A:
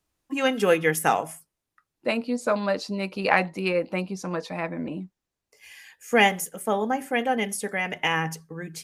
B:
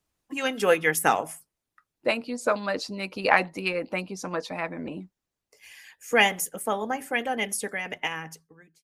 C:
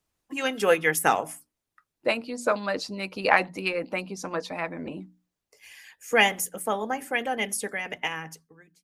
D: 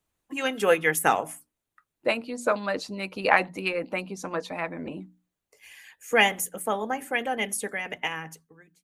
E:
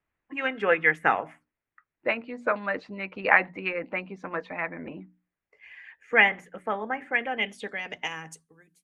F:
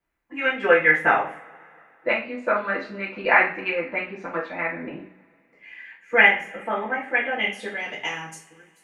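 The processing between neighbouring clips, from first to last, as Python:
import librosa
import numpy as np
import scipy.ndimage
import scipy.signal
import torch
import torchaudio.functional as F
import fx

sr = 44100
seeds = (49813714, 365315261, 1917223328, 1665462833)

y1 = fx.fade_out_tail(x, sr, length_s=1.31)
y1 = fx.hpss(y1, sr, part='percussive', gain_db=8)
y1 = F.gain(torch.from_numpy(y1), -6.0).numpy()
y2 = fx.hum_notches(y1, sr, base_hz=60, count=5)
y3 = fx.peak_eq(y2, sr, hz=5100.0, db=-6.5, octaves=0.39)
y4 = fx.filter_sweep_lowpass(y3, sr, from_hz=2000.0, to_hz=11000.0, start_s=7.17, end_s=8.57, q=2.4)
y4 = F.gain(torch.from_numpy(y4), -3.5).numpy()
y5 = fx.rev_double_slope(y4, sr, seeds[0], early_s=0.37, late_s=2.7, knee_db=-28, drr_db=-6.5)
y5 = F.gain(torch.from_numpy(y5), -3.0).numpy()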